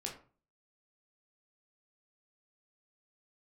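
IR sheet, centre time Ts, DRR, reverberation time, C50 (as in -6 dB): 22 ms, -0.5 dB, 0.40 s, 8.5 dB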